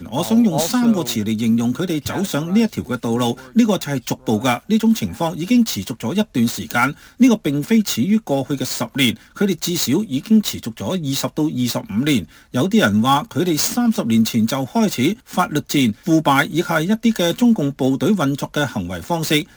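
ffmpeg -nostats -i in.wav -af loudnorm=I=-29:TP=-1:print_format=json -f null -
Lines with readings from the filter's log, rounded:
"input_i" : "-18.5",
"input_tp" : "-1.4",
"input_lra" : "1.7",
"input_thresh" : "-28.5",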